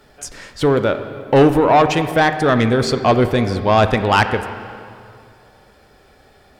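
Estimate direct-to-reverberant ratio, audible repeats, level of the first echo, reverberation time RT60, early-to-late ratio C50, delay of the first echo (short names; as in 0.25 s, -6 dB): 9.0 dB, none, none, 2.4 s, 10.0 dB, none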